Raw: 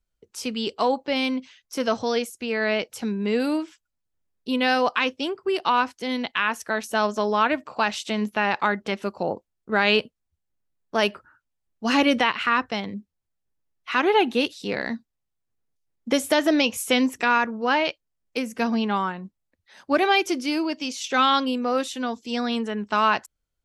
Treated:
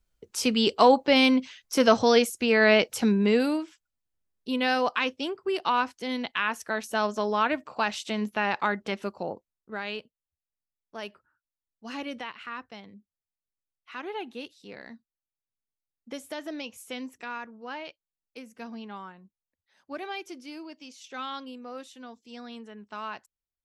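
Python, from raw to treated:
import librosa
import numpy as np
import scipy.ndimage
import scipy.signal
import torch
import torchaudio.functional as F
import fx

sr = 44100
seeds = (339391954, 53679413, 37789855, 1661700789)

y = fx.gain(x, sr, db=fx.line((3.17, 4.5), (3.59, -4.0), (9.03, -4.0), (9.99, -16.5)))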